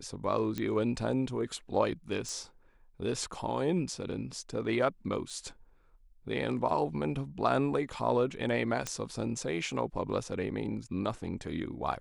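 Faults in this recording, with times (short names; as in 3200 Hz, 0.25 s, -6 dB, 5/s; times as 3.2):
0.58 pop -20 dBFS
2.29 pop
5.3 gap 3.9 ms
8.87 pop -18 dBFS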